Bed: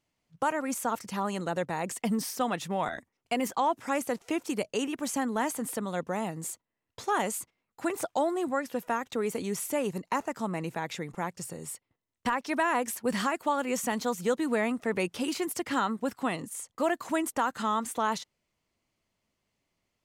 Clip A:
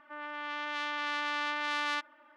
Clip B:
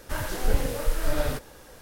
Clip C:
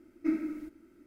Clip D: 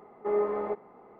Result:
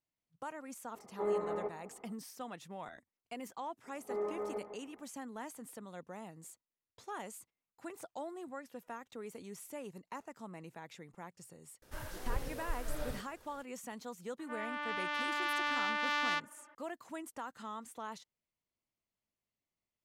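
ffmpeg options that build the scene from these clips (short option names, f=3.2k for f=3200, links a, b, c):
-filter_complex "[4:a]asplit=2[a][b];[0:a]volume=-15.5dB[c];[a]asplit=2[d][e];[e]adelay=204.1,volume=-17dB,highshelf=f=4k:g=-4.59[f];[d][f]amix=inputs=2:normalize=0[g];[b]asplit=2[h][i];[i]adelay=163.3,volume=-8dB,highshelf=f=4k:g=-3.67[j];[h][j]amix=inputs=2:normalize=0[k];[1:a]adynamicsmooth=sensitivity=3:basefreq=6k[l];[g]atrim=end=1.19,asetpts=PTS-STARTPTS,volume=-6.5dB,afade=t=in:d=0.004:c=hsin,afade=t=out:st=1.186:d=0.004:c=hsin,adelay=940[m];[k]atrim=end=1.19,asetpts=PTS-STARTPTS,volume=-10dB,afade=t=in:d=0.004:c=hsin,afade=t=out:st=1.186:d=0.004:c=hsin,adelay=3840[n];[2:a]atrim=end=1.81,asetpts=PTS-STARTPTS,volume=-14dB,afade=t=in:d=0.004:c=hsin,afade=t=out:st=1.806:d=0.004:c=hsin,adelay=11820[o];[l]atrim=end=2.36,asetpts=PTS-STARTPTS,volume=-0.5dB,afade=t=in:d=0.004:c=hsin,afade=t=out:st=2.356:d=0.004:c=hsin,adelay=14390[p];[c][m][n][o][p]amix=inputs=5:normalize=0"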